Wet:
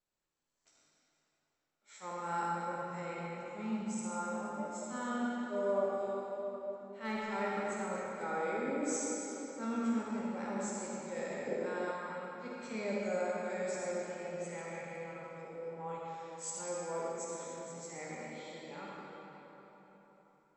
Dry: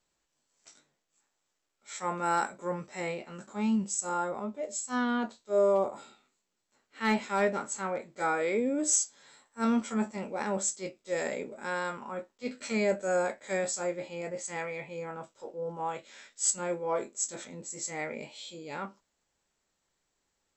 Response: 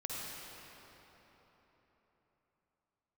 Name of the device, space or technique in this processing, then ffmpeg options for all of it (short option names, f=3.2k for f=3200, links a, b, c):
swimming-pool hall: -filter_complex "[1:a]atrim=start_sample=2205[a];[0:a][a]afir=irnorm=-1:irlink=0,highshelf=f=4.6k:g=-4.5,asettb=1/sr,asplit=3[b][c][d];[b]atrim=end=11.474[e];[c]atrim=start=11.47:end=11.91,asetpts=PTS-STARTPTS,afade=t=in:d=0.004:c=qsin,afade=t=out:st=0.436:d=0.004:c=qsin,equalizer=f=390:w=1.2:g=8.5[f];[d]atrim=start=11.906[g];[e][f]acrossfade=d=0.004:c1=hsin:c2=qsin[h];[h][g]acrossfade=d=0.004:c1=qsin:c2=hsin,volume=-8dB"